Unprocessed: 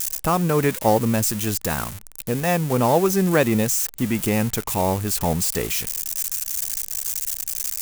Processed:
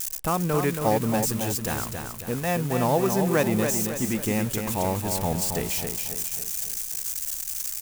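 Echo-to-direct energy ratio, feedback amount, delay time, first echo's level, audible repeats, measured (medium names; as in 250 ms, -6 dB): -5.0 dB, 47%, 274 ms, -6.0 dB, 5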